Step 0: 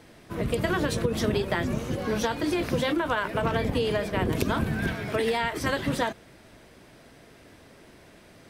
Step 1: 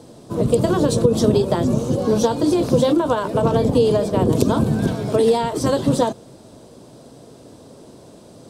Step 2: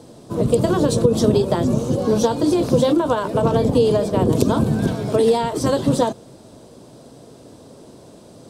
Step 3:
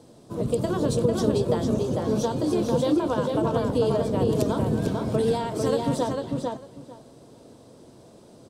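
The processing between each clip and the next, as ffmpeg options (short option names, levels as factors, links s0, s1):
-af "equalizer=f=125:t=o:w=1:g=10,equalizer=f=250:t=o:w=1:g=8,equalizer=f=500:t=o:w=1:g=10,equalizer=f=1000:t=o:w=1:g=7,equalizer=f=2000:t=o:w=1:g=-12,equalizer=f=4000:t=o:w=1:g=6,equalizer=f=8000:t=o:w=1:g=11,volume=0.891"
-af anull
-filter_complex "[0:a]asplit=2[s0][s1];[s1]adelay=448,lowpass=f=4100:p=1,volume=0.708,asplit=2[s2][s3];[s3]adelay=448,lowpass=f=4100:p=1,volume=0.17,asplit=2[s4][s5];[s5]adelay=448,lowpass=f=4100:p=1,volume=0.17[s6];[s0][s2][s4][s6]amix=inputs=4:normalize=0,volume=0.398"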